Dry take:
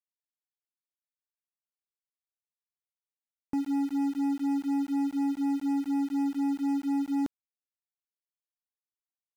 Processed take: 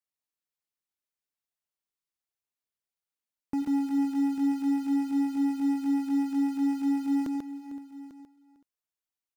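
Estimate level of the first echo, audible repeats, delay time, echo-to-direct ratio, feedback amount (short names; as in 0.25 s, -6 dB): -17.5 dB, 8, 89 ms, -3.5 dB, no steady repeat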